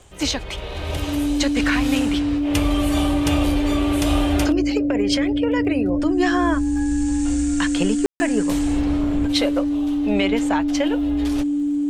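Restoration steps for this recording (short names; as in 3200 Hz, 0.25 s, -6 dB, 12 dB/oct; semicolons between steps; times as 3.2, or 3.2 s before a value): de-click; notch 290 Hz, Q 30; room tone fill 8.06–8.2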